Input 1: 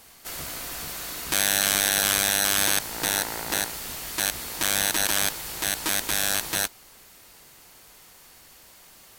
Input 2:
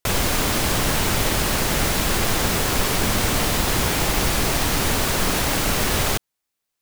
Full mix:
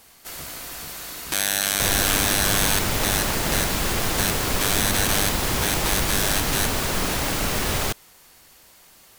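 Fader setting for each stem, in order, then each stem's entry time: -0.5, -3.0 dB; 0.00, 1.75 s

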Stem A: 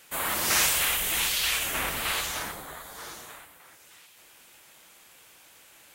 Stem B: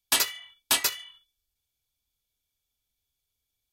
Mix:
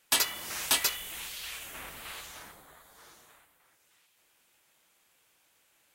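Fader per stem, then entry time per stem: -14.0, -2.5 dB; 0.00, 0.00 s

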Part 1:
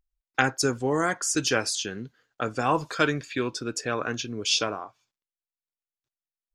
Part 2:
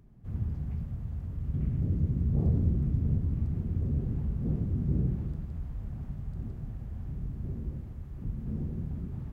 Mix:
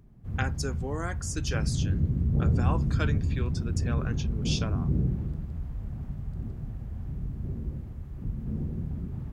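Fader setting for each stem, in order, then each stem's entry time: -10.0, +2.0 dB; 0.00, 0.00 s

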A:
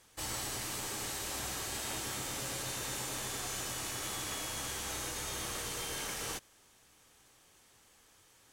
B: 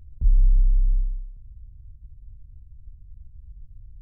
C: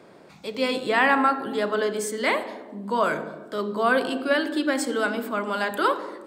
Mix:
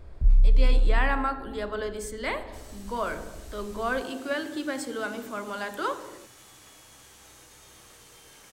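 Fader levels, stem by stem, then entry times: -13.0, -1.0, -7.5 dB; 2.35, 0.00, 0.00 s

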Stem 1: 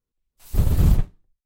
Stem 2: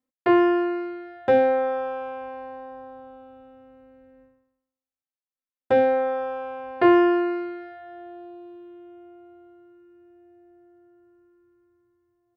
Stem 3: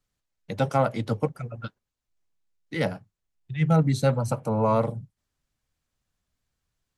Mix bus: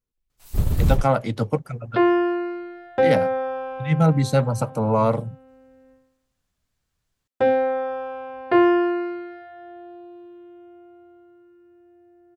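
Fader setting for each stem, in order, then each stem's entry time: -2.0, 0.0, +3.0 dB; 0.00, 1.70, 0.30 s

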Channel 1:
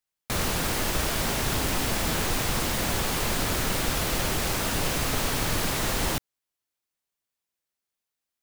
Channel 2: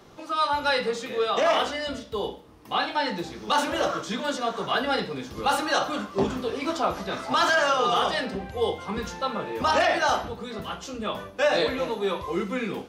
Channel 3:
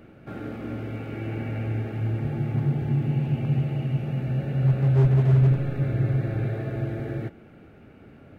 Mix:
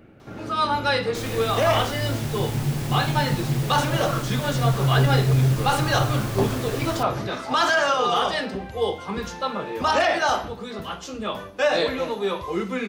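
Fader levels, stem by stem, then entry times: -8.5, +1.5, -1.0 dB; 0.85, 0.20, 0.00 s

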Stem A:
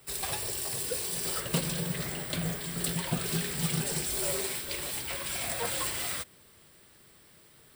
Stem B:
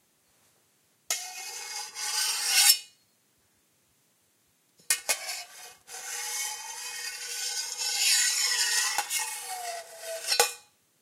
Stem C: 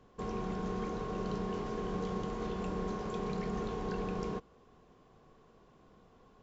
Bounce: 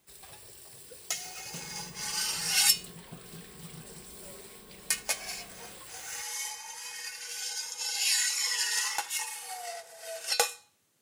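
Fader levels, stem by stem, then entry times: -16.0, -3.5, -19.0 dB; 0.00, 0.00, 1.40 s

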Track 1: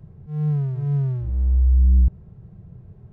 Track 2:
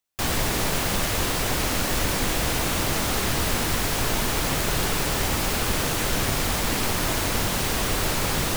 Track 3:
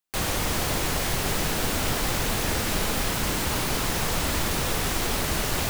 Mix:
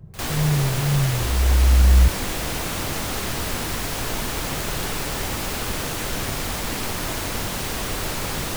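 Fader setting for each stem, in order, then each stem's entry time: +1.0, -2.5, -15.5 dB; 0.00, 0.00, 0.00 s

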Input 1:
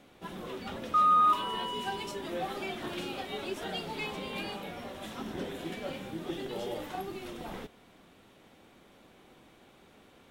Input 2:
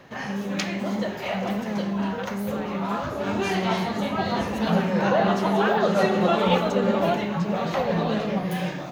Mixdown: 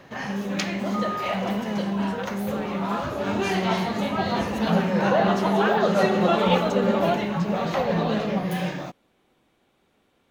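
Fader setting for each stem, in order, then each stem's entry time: -8.0, +0.5 dB; 0.00, 0.00 s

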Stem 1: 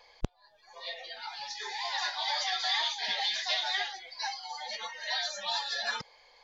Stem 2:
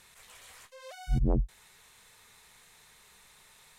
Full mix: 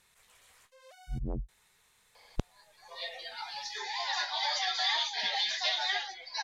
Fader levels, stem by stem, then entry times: 0.0, -9.0 dB; 2.15, 0.00 s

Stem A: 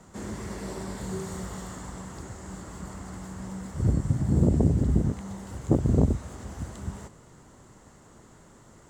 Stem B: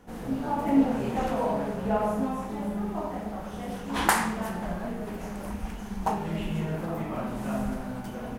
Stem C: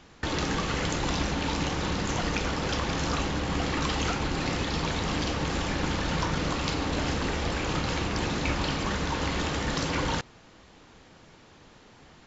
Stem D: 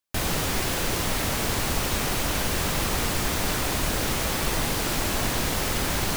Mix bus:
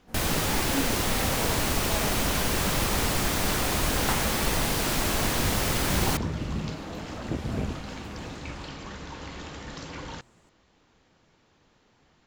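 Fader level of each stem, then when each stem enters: -9.5, -9.0, -10.5, -0.5 dB; 1.60, 0.00, 0.00, 0.00 s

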